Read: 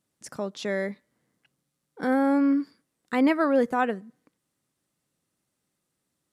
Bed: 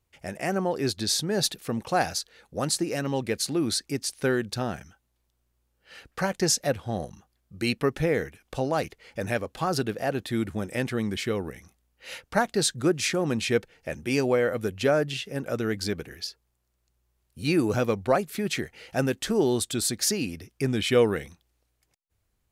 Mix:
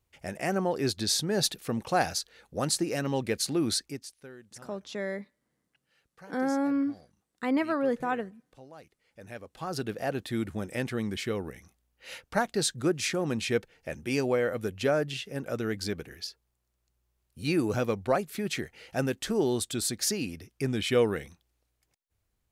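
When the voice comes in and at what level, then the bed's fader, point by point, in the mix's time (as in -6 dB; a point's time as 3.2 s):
4.30 s, -5.5 dB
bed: 3.78 s -1.5 dB
4.28 s -23 dB
8.91 s -23 dB
9.94 s -3.5 dB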